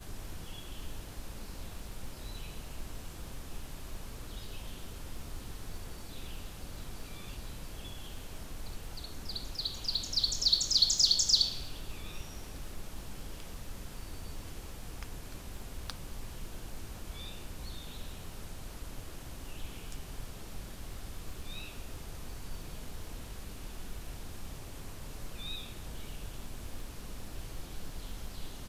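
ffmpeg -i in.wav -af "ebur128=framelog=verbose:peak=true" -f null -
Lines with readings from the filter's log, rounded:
Integrated loudness:
  I:         -37.0 LUFS
  Threshold: -47.0 LUFS
Loudness range:
  LRA:        18.3 LU
  Threshold: -56.6 LUFS
  LRA low:   -46.1 LUFS
  LRA high:  -27.9 LUFS
True peak:
  Peak:      -11.3 dBFS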